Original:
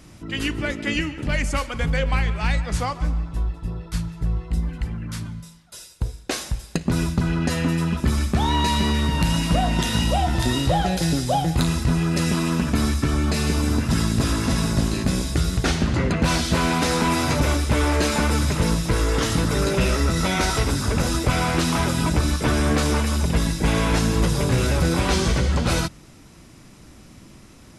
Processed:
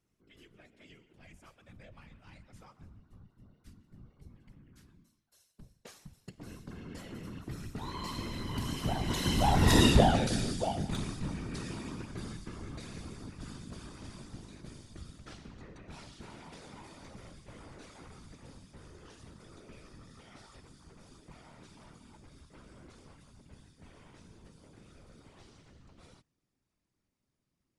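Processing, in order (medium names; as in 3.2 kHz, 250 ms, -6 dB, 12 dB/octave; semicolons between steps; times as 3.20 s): Doppler pass-by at 9.80 s, 24 m/s, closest 5.2 m; whisper effect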